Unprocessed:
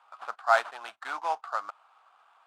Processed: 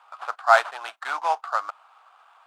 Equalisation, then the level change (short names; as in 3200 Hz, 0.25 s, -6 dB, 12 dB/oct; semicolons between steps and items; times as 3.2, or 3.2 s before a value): HPF 430 Hz 12 dB/oct; +6.5 dB